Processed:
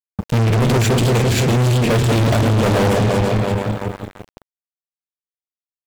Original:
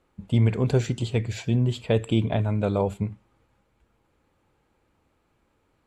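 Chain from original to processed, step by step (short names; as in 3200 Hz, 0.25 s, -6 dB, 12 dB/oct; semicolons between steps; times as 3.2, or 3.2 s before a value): regenerating reverse delay 0.169 s, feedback 72%, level -5.5 dB; fuzz box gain 35 dB, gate -40 dBFS; bit-crush 8-bit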